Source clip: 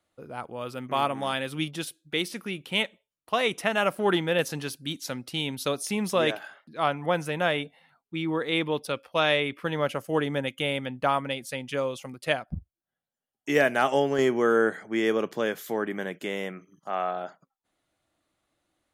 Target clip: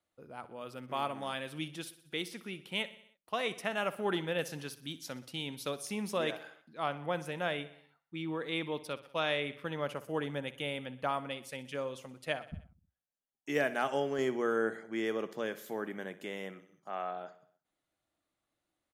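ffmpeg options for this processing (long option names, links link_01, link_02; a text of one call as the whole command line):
ffmpeg -i in.wav -af "bandreject=frequency=60:width_type=h:width=6,bandreject=frequency=120:width_type=h:width=6,aecho=1:1:62|124|186|248|310:0.15|0.0868|0.0503|0.0292|0.0169,volume=-9dB" out.wav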